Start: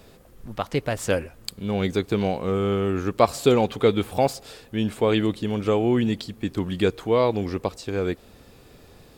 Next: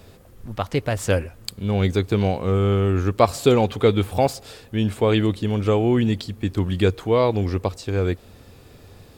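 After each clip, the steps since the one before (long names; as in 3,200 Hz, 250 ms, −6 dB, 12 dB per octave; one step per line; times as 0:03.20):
parametric band 94 Hz +9 dB 0.53 octaves
level +1.5 dB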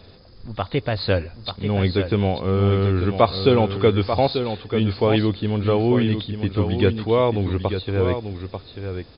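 hearing-aid frequency compression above 3,400 Hz 4 to 1
single-tap delay 890 ms −8 dB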